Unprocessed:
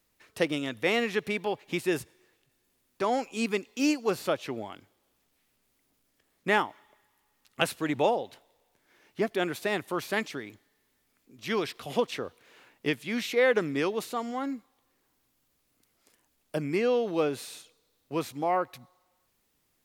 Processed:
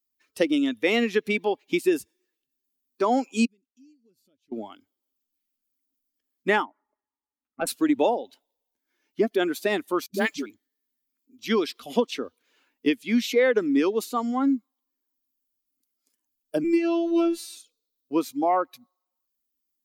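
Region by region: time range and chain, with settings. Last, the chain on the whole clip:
3.45–4.52 s: amplifier tone stack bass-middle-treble 10-0-1 + compression 4:1, threshold -54 dBFS
6.65–7.67 s: Gaussian low-pass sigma 4.6 samples + valve stage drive 17 dB, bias 0.4
10.06–10.46 s: block-companded coder 7-bit + phase dispersion highs, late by 81 ms, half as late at 320 Hz
16.64–17.56 s: robot voice 337 Hz + three bands compressed up and down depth 40%
whole clip: expander on every frequency bin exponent 1.5; resonant low shelf 180 Hz -11.5 dB, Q 3; compression 3:1, threshold -27 dBFS; trim +8.5 dB

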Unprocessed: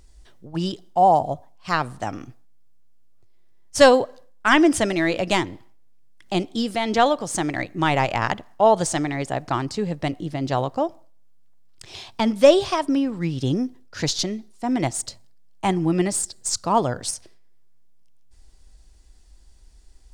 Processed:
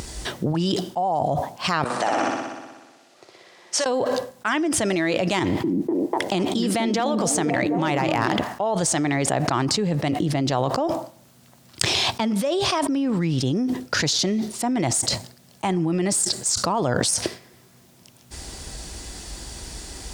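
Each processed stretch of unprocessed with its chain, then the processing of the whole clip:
1.84–3.86 s: compression 3:1, threshold -43 dBFS + band-pass 500–6100 Hz + flutter echo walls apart 10.5 m, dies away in 1.3 s
5.39–8.36 s: compression 4:1, threshold -27 dBFS + hard clipper -20.5 dBFS + repeats whose band climbs or falls 247 ms, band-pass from 250 Hz, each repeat 0.7 oct, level -1 dB
whole clip: high-pass 100 Hz; level flattener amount 100%; trim -13.5 dB

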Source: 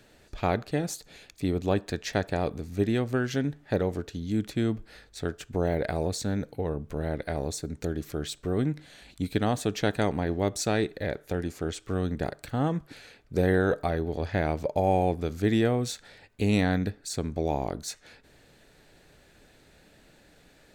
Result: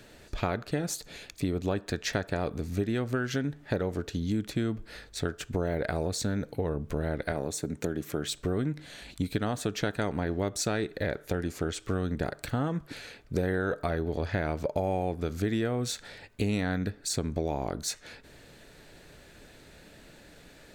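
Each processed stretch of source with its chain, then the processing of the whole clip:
7.32–8.28 s: high-pass 120 Hz + peaking EQ 4.6 kHz -5.5 dB 0.61 oct
whole clip: band-stop 780 Hz, Q 17; dynamic bell 1.4 kHz, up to +5 dB, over -48 dBFS, Q 3.1; compression 4:1, threshold -32 dBFS; trim +5 dB

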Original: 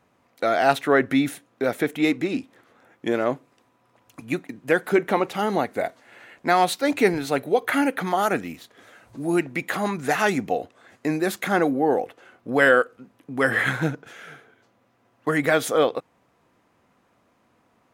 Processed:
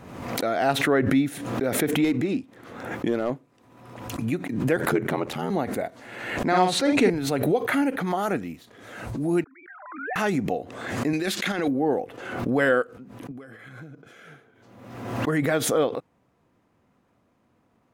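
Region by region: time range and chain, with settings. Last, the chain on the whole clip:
2.04–3.30 s: gate -56 dBFS, range -8 dB + hard clipper -14 dBFS
4.76–5.51 s: high-pass 57 Hz + ring modulator 42 Hz
6.47–7.10 s: low-pass 8.4 kHz + doubling 49 ms -2 dB
9.44–10.16 s: formants replaced by sine waves + band-pass filter 1.4 kHz, Q 5.9 + distance through air 260 m
11.13–11.68 s: frequency weighting D + compressor with a negative ratio -22 dBFS, ratio -0.5
13.31–14.26 s: compression 20:1, threshold -35 dBFS + comb of notches 910 Hz
whole clip: bass shelf 410 Hz +9 dB; swell ahead of each attack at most 50 dB/s; trim -7 dB

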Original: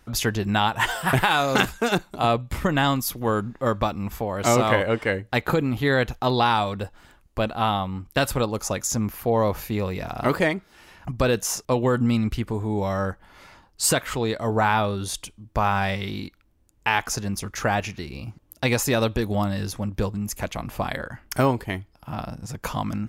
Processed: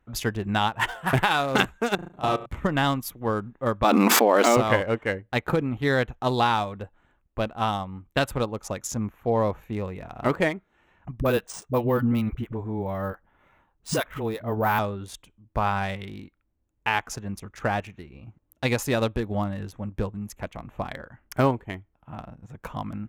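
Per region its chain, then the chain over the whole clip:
1.95–2.46 s: flutter echo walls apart 6.3 m, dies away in 0.74 s + level held to a coarse grid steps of 10 dB
3.84–4.57 s: median filter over 3 samples + brick-wall FIR high-pass 210 Hz + level flattener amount 100%
11.20–14.79 s: band-stop 4.4 kHz, Q 10 + phase dispersion highs, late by 50 ms, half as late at 350 Hz + careless resampling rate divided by 3×, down filtered, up hold
whole clip: local Wiener filter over 9 samples; upward expansion 1.5:1, over -38 dBFS

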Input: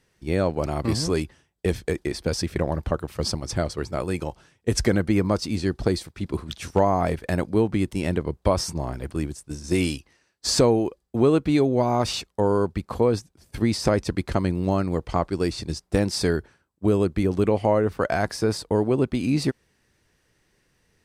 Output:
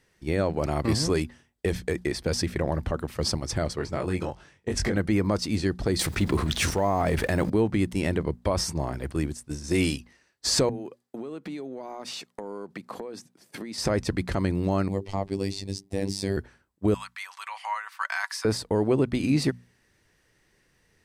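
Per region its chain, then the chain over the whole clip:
3.77–4.97 s: treble shelf 10 kHz -10.5 dB + compression 4:1, threshold -24 dBFS + doubling 22 ms -3.5 dB
5.99–7.50 s: companding laws mixed up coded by mu + level flattener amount 50%
10.69–13.78 s: high-pass 170 Hz 24 dB/octave + compression 16:1, threshold -32 dBFS
14.88–16.37 s: peaking EQ 1.4 kHz -14 dB 0.62 oct + hum notches 50/100/150/200/250/300/350/400 Hz + robot voice 97.8 Hz
16.94–18.45 s: elliptic high-pass 960 Hz, stop band 60 dB + comb 5.2 ms, depth 32%
whole clip: peaking EQ 1.9 kHz +3.5 dB 0.36 oct; hum notches 60/120/180/240 Hz; peak limiter -13.5 dBFS

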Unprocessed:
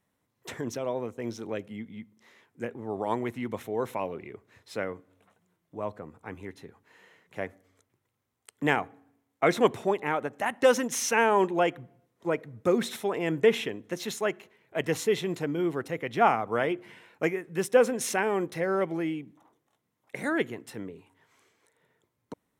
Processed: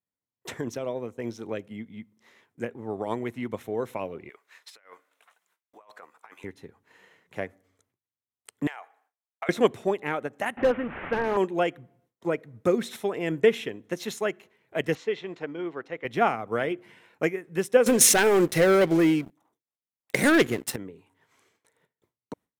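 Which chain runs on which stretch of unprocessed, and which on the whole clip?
4.29–6.44 s: high-pass 1.1 kHz + compressor with a negative ratio -52 dBFS
8.67–9.49 s: high-pass 660 Hz 24 dB/octave + compression 12:1, threshold -31 dBFS
10.57–11.37 s: one-bit delta coder 16 kbps, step -28.5 dBFS + low-pass 1.9 kHz + overload inside the chain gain 17.5 dB
14.95–16.05 s: high-pass 540 Hz 6 dB/octave + distance through air 180 m
17.86–20.76 s: waveshaping leveller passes 3 + treble shelf 5.7 kHz +7 dB
whole clip: gate with hold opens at -57 dBFS; dynamic bell 930 Hz, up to -5 dB, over -40 dBFS, Q 2.1; transient shaper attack +3 dB, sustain -3 dB

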